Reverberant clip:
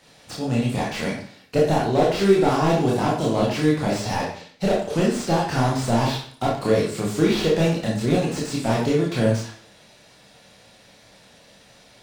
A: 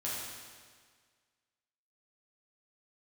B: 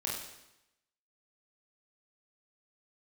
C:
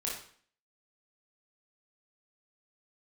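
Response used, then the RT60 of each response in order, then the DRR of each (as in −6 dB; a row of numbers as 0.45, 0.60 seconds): C; 1.7, 0.90, 0.50 seconds; −7.5, −4.0, −4.5 decibels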